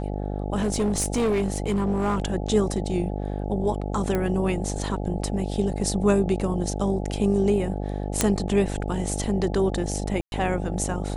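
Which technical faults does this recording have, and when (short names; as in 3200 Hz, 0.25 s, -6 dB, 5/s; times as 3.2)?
buzz 50 Hz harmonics 17 -29 dBFS
0.59–2.2 clipped -19 dBFS
4.15 pop -13 dBFS
8.21 pop -4 dBFS
10.21–10.32 gap 0.111 s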